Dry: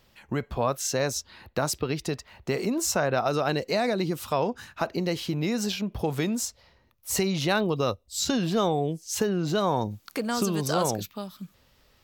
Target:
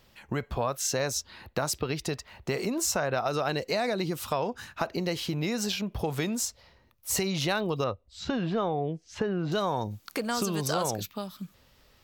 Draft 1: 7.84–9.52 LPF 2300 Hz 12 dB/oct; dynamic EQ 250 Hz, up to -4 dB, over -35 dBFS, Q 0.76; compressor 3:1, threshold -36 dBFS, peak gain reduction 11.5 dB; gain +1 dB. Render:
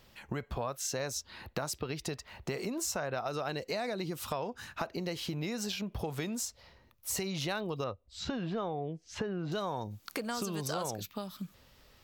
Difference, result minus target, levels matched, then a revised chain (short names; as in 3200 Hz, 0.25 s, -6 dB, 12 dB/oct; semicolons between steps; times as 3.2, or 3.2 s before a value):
compressor: peak gain reduction +7 dB
7.84–9.52 LPF 2300 Hz 12 dB/oct; dynamic EQ 250 Hz, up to -4 dB, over -35 dBFS, Q 0.76; compressor 3:1, threshold -25.5 dBFS, peak gain reduction 4.5 dB; gain +1 dB